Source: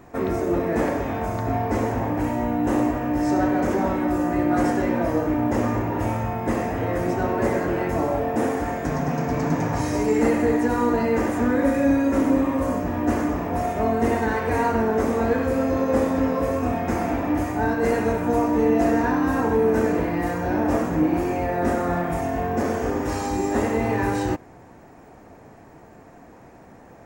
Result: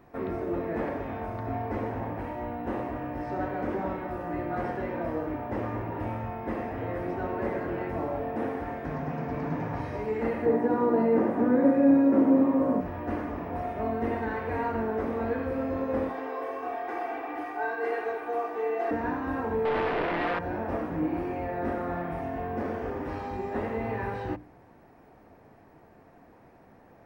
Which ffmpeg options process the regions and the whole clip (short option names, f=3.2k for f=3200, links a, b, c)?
-filter_complex "[0:a]asettb=1/sr,asplit=3[a][b][c];[a]atrim=end=10.464[d];[b]atrim=start=10.46:end=12.81,asetpts=PTS-STARTPTS,afade=t=in:d=0.004:c=qsin,afade=t=out:st=2.346:d=0.004:c=qsin,highpass=f=140:w=0.5412,highpass=f=140:w=1.3066,tiltshelf=f=1.4k:g=9[e];[c]atrim=start=12.806[f];[d][e]acrossfade=d=0.004:c1=hsin:c2=qsin[g];[g][f]acrossfade=d=0.004:c1=qsin:c2=hsin,asettb=1/sr,asplit=3[h][i][j];[h]atrim=end=16.094[k];[i]atrim=start=16.09:end=18.91,asetpts=PTS-STARTPTS,afade=t=in:d=0.004:c=qsin,afade=t=out:st=2.816:d=0.004:c=qsin,highpass=510,aecho=1:1:2.6:0.93,atrim=end_sample=124362[l];[j]atrim=start=18.906[m];[k][l]acrossfade=d=0.004:c1=hsin:c2=qsin[n];[n][m]acrossfade=d=0.004:c1=qsin:c2=hsin,asettb=1/sr,asplit=3[o][p][q];[o]atrim=end=19.654[r];[p]atrim=start=19.65:end=20.39,asetpts=PTS-STARTPTS,afade=t=in:d=0.004:c=qsin,afade=t=out:st=0.736:d=0.004:c=qsin,aeval=exprs='max(val(0),0)':c=same,asplit=2[s][t];[t]highpass=f=720:p=1,volume=27dB,asoftclip=type=tanh:threshold=-10.5dB[u];[s][u]amix=inputs=2:normalize=0,lowpass=f=4.6k:p=1,volume=-6dB[v];[q]atrim=start=20.386[w];[r][v]acrossfade=d=0.004:c1=hsin:c2=qsin[x];[x][w]acrossfade=d=0.004:c1=qsin:c2=hsin,bandreject=f=60:t=h:w=6,bandreject=f=120:t=h:w=6,bandreject=f=180:t=h:w=6,bandreject=f=240:t=h:w=6,bandreject=f=300:t=h:w=6,acrossover=split=3800[y][z];[z]acompressor=threshold=-57dB:ratio=4:attack=1:release=60[aa];[y][aa]amix=inputs=2:normalize=0,equalizer=f=7.1k:w=2.2:g=-13,volume=-8dB"